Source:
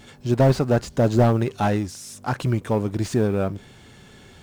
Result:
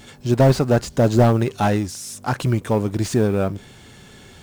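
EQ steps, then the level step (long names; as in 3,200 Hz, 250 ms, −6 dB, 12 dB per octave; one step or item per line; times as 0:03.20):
high-shelf EQ 5,100 Hz +4.5 dB
+2.5 dB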